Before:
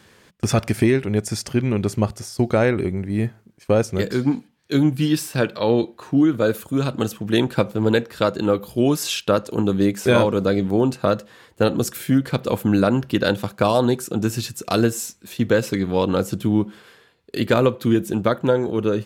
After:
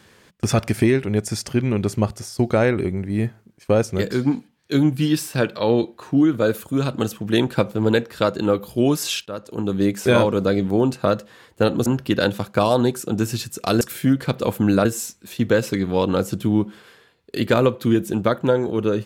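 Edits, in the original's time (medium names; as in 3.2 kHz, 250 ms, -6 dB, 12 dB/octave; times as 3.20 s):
9.26–9.92 s: fade in, from -17.5 dB
11.86–12.90 s: move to 14.85 s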